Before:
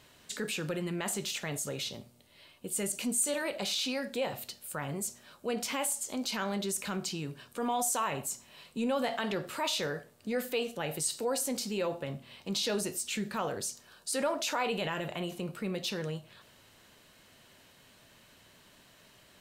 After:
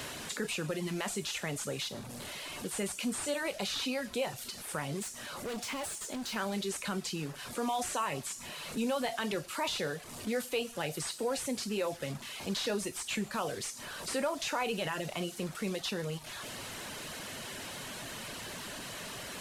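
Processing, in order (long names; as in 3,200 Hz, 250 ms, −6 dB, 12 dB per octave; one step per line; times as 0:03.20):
linear delta modulator 64 kbit/s, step −39 dBFS
reverb reduction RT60 0.59 s
on a send at −5.5 dB: first difference + convolution reverb RT60 0.95 s, pre-delay 7 ms
0:05.02–0:06.36: on the sum: hard clipping −37 dBFS, distortion −18 dB
multiband upward and downward compressor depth 40%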